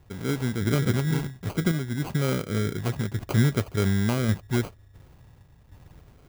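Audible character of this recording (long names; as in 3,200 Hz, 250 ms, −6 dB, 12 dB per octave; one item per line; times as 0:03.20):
phaser sweep stages 4, 0.59 Hz, lowest notch 590–1,800 Hz
aliases and images of a low sample rate 1,800 Hz, jitter 0%
sample-and-hold tremolo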